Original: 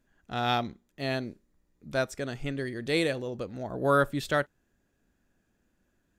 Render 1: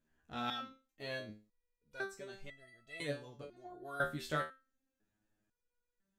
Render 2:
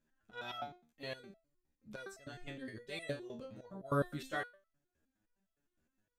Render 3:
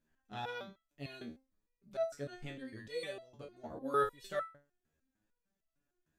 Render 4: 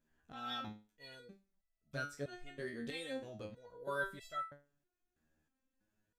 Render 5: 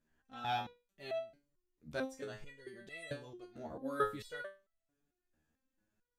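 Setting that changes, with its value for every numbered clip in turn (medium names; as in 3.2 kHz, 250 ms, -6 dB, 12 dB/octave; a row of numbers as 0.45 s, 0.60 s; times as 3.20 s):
resonator arpeggio, rate: 2 Hz, 9.7 Hz, 6.6 Hz, 3.1 Hz, 4.5 Hz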